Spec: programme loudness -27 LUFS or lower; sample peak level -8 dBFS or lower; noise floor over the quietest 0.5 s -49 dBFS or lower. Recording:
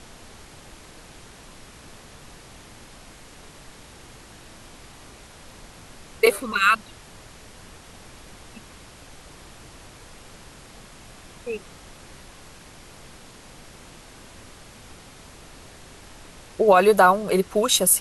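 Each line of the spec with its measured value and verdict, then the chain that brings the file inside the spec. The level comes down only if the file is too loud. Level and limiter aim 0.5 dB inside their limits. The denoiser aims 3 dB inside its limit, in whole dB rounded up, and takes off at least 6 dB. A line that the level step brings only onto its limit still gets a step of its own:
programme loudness -19.5 LUFS: fail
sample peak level -5.5 dBFS: fail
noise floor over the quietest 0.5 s -46 dBFS: fail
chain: trim -8 dB

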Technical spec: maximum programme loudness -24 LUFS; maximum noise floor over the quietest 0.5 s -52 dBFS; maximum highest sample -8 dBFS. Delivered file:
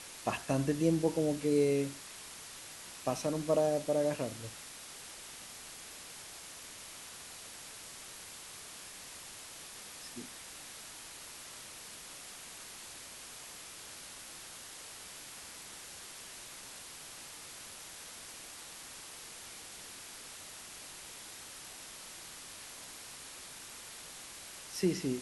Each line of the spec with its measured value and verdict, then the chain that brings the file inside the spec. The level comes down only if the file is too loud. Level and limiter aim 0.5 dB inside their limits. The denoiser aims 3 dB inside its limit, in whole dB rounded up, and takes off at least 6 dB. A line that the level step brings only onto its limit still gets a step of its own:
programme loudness -39.5 LUFS: pass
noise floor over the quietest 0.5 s -49 dBFS: fail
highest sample -16.5 dBFS: pass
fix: noise reduction 6 dB, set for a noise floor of -49 dBFS

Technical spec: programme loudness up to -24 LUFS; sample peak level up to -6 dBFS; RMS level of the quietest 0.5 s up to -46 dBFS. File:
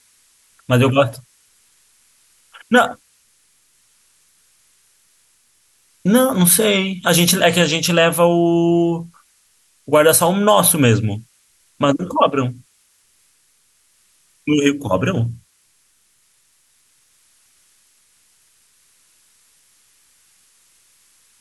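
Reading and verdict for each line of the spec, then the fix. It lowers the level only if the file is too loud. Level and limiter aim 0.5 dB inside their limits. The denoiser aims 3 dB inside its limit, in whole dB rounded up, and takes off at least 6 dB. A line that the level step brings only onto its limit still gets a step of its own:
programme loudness -15.5 LUFS: fail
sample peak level -2.0 dBFS: fail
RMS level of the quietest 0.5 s -60 dBFS: pass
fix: trim -9 dB

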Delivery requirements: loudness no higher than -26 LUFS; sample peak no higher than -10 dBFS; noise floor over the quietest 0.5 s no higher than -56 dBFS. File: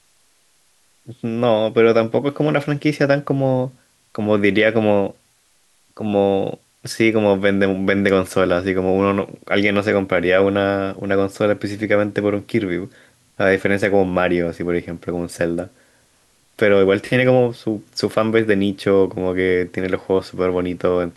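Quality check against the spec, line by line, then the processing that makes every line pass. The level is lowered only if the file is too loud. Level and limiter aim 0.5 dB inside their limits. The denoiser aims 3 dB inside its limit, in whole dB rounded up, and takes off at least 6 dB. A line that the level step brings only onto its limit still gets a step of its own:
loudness -18.5 LUFS: fail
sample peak -3.5 dBFS: fail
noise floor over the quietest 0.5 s -59 dBFS: pass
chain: trim -8 dB

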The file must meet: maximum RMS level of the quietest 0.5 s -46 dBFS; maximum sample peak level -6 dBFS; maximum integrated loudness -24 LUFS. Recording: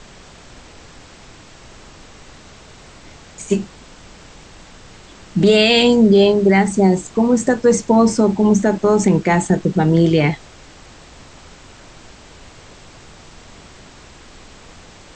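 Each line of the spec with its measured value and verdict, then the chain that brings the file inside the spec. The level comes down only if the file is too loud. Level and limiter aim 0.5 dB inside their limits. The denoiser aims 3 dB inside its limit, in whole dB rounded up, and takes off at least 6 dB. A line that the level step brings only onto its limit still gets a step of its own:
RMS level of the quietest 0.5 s -42 dBFS: fail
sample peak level -4.0 dBFS: fail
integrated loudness -14.5 LUFS: fail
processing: trim -10 dB

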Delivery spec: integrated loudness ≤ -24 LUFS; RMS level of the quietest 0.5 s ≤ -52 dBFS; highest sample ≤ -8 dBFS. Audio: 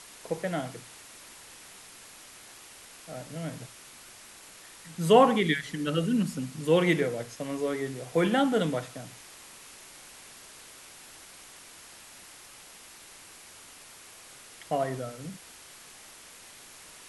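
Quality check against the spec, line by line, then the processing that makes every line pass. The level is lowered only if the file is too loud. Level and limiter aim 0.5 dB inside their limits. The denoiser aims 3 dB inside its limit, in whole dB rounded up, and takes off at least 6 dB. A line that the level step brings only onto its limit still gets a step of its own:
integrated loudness -27.5 LUFS: pass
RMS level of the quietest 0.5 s -50 dBFS: fail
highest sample -6.5 dBFS: fail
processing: noise reduction 6 dB, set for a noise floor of -50 dBFS; peak limiter -8.5 dBFS

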